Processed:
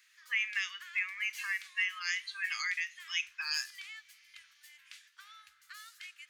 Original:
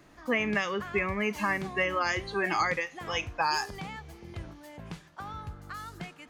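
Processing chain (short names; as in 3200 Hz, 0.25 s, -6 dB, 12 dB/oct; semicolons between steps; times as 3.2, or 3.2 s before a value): inverse Chebyshev high-pass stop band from 710 Hz, stop band 50 dB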